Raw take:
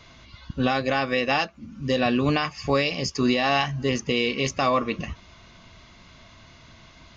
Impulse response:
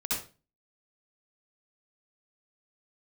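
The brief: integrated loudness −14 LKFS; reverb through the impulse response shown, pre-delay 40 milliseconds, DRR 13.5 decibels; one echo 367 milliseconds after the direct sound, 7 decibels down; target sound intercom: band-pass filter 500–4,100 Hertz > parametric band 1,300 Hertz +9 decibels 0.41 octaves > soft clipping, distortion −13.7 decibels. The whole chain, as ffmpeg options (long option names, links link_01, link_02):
-filter_complex "[0:a]aecho=1:1:367:0.447,asplit=2[link_01][link_02];[1:a]atrim=start_sample=2205,adelay=40[link_03];[link_02][link_03]afir=irnorm=-1:irlink=0,volume=-19.5dB[link_04];[link_01][link_04]amix=inputs=2:normalize=0,highpass=500,lowpass=4100,equalizer=frequency=1300:width_type=o:width=0.41:gain=9,asoftclip=threshold=-17dB,volume=12dB"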